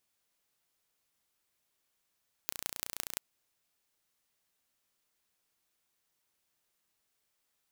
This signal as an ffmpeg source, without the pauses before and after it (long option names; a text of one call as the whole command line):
ffmpeg -f lavfi -i "aevalsrc='0.531*eq(mod(n,1500),0)*(0.5+0.5*eq(mod(n,7500),0))':duration=0.69:sample_rate=44100" out.wav